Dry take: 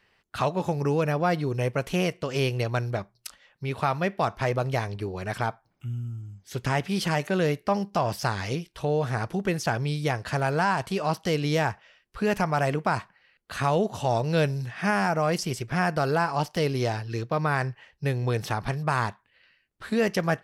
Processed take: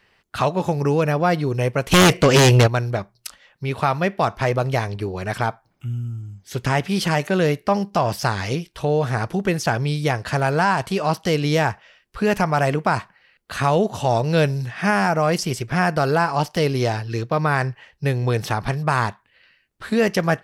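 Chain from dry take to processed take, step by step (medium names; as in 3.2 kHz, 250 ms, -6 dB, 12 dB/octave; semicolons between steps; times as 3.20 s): 1.91–2.66 s: sine folder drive 12 dB -> 8 dB, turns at -14 dBFS; trim +5.5 dB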